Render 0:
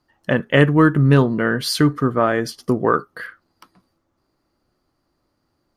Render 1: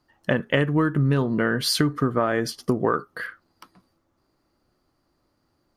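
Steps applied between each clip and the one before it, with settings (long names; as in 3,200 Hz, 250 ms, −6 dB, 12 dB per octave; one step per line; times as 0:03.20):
downward compressor 10 to 1, threshold −17 dBFS, peak gain reduction 10 dB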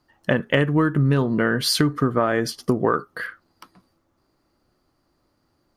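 hard clipping −8 dBFS, distortion −39 dB
level +2 dB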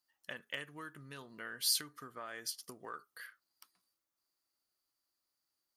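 first-order pre-emphasis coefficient 0.97
level −7 dB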